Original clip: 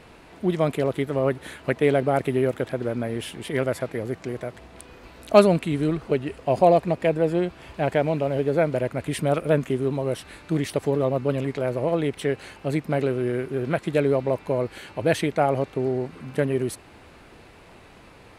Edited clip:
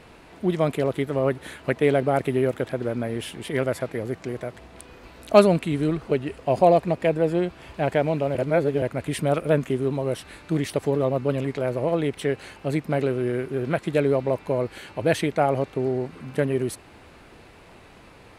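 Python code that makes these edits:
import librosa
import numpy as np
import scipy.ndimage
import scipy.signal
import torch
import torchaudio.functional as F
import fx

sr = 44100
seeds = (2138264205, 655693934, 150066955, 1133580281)

y = fx.edit(x, sr, fx.reverse_span(start_s=8.35, length_s=0.47), tone=tone)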